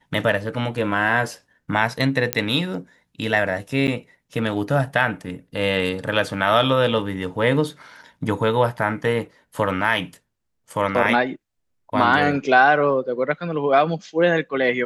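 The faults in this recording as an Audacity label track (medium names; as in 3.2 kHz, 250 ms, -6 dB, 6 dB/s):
2.330000	2.330000	pop -2 dBFS
3.870000	3.880000	dropout 9.1 ms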